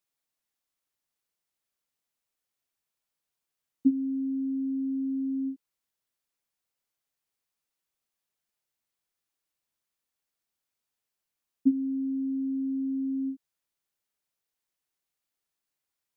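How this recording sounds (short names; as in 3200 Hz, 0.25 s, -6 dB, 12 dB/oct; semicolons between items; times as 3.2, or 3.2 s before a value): noise floor -87 dBFS; spectral tilt -1.5 dB/oct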